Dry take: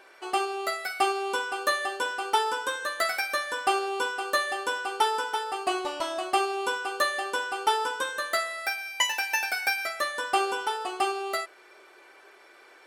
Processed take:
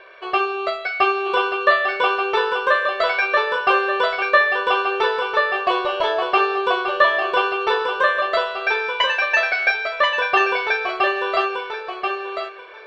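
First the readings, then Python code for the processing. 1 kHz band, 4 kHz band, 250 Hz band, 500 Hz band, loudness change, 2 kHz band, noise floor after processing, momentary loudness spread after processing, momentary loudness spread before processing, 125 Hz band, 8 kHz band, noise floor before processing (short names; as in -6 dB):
+8.0 dB, +6.0 dB, +7.5 dB, +11.0 dB, +9.0 dB, +10.5 dB, -33 dBFS, 7 LU, 4 LU, n/a, under -10 dB, -54 dBFS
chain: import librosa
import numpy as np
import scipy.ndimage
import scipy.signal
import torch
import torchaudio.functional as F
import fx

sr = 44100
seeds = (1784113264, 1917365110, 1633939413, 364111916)

y = scipy.signal.sosfilt(scipy.signal.butter(4, 3700.0, 'lowpass', fs=sr, output='sos'), x)
y = y + 0.95 * np.pad(y, (int(1.8 * sr / 1000.0), 0))[:len(y)]
y = fx.echo_feedback(y, sr, ms=1033, feedback_pct=17, wet_db=-4.0)
y = F.gain(torch.from_numpy(y), 6.0).numpy()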